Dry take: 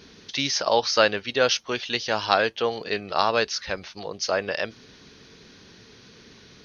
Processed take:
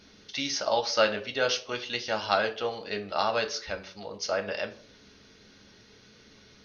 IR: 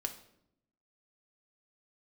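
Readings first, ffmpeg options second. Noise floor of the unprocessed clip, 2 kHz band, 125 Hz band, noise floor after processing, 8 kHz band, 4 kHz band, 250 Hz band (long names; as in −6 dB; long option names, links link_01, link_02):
−51 dBFS, −5.0 dB, −6.0 dB, −56 dBFS, can't be measured, −5.5 dB, −5.5 dB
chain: -filter_complex "[1:a]atrim=start_sample=2205,asetrate=83790,aresample=44100[link_01];[0:a][link_01]afir=irnorm=-1:irlink=0"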